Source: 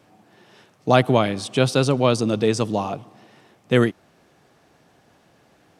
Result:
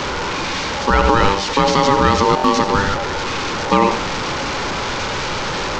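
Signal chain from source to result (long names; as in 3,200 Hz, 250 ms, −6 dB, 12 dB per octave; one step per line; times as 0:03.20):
linear delta modulator 32 kbit/s, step −23.5 dBFS
ring modulation 690 Hz
on a send at −10 dB: convolution reverb RT60 0.20 s, pre-delay 73 ms
on the sum: boost into a limiter +11 dB
buffer that repeats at 0:02.35, samples 1,024, times 3
level −1 dB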